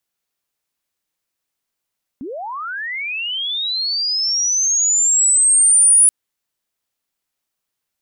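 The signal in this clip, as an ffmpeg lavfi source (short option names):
-f lavfi -i "aevalsrc='pow(10,(-26+19*t/3.88)/20)*sin(2*PI*(230*t+9670*t*t/(2*3.88)))':d=3.88:s=44100"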